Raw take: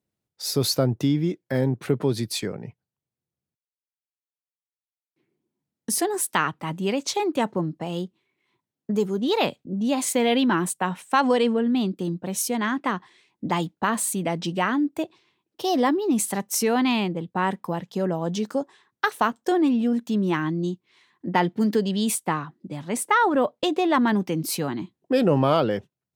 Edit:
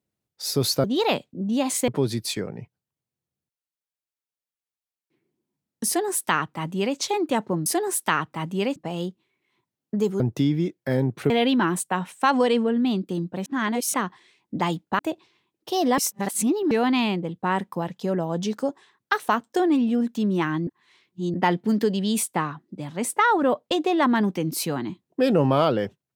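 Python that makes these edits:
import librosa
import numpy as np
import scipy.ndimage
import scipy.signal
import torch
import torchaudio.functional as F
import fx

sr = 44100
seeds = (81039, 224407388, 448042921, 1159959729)

y = fx.edit(x, sr, fx.swap(start_s=0.84, length_s=1.1, other_s=9.16, other_length_s=1.04),
    fx.duplicate(start_s=5.93, length_s=1.1, to_s=7.72),
    fx.reverse_span(start_s=12.36, length_s=0.48),
    fx.cut(start_s=13.89, length_s=1.02),
    fx.reverse_span(start_s=15.9, length_s=0.73),
    fx.reverse_span(start_s=20.59, length_s=0.67), tone=tone)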